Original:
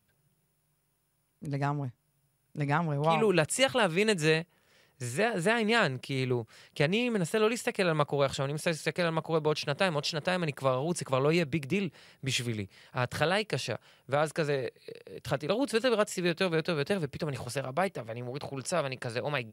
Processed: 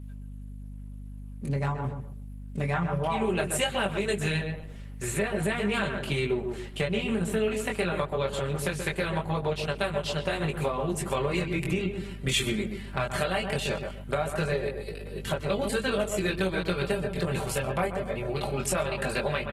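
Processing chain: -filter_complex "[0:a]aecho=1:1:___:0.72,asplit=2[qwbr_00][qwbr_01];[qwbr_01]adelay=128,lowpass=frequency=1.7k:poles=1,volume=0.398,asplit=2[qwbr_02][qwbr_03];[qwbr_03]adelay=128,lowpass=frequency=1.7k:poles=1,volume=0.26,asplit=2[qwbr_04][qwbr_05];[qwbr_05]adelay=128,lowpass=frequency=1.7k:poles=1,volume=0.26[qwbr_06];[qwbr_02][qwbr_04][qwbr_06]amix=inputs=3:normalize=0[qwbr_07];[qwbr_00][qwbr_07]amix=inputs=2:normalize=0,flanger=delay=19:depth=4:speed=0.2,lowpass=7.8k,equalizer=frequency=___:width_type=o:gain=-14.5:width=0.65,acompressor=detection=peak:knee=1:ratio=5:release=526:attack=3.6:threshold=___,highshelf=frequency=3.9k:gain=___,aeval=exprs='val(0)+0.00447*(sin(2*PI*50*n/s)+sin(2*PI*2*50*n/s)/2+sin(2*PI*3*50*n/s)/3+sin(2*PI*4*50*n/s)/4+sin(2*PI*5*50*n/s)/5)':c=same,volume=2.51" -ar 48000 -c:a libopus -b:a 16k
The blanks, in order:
5.1, 5.3k, 0.0282, 11.5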